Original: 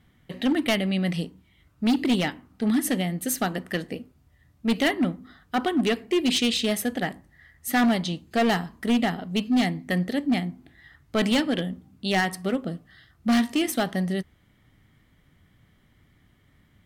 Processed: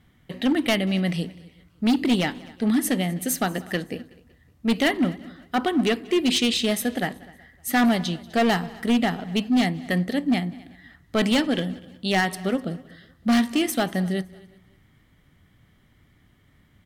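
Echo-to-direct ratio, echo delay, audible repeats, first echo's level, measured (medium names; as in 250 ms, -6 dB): -19.5 dB, 187 ms, 3, -23.5 dB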